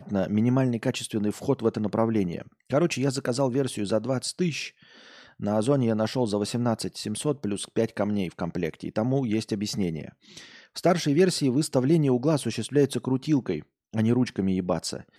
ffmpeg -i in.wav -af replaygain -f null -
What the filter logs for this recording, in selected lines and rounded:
track_gain = +6.6 dB
track_peak = 0.260